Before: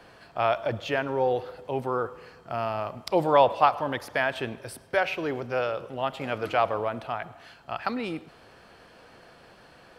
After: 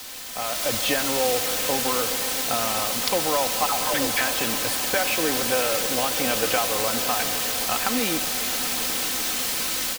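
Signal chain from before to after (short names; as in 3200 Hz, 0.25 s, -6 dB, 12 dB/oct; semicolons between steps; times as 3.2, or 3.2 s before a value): 3.66–4.21 dispersion lows, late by 0.146 s, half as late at 660 Hz; compressor, threshold -31 dBFS, peak gain reduction 16.5 dB; swelling echo 0.131 s, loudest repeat 5, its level -17 dB; requantised 6-bit, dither triangular; AGC gain up to 12 dB; bell 3900 Hz +4 dB 1.9 oct; comb 3.9 ms, depth 49%; gain -4.5 dB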